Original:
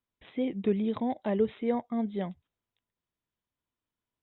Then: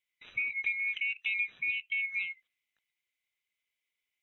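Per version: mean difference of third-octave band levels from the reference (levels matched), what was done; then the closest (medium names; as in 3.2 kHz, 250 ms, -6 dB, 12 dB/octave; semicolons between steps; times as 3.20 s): 14.0 dB: split-band scrambler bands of 2 kHz; resonant high shelf 1.6 kHz +7.5 dB, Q 1.5; compression 4:1, threshold -26 dBFS, peak gain reduction 12.5 dB; trim -5 dB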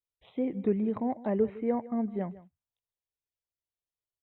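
3.0 dB: gate -56 dBFS, range -9 dB; touch-sensitive phaser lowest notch 230 Hz, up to 3.5 kHz, full sweep at -31 dBFS; delay 158 ms -18 dB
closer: second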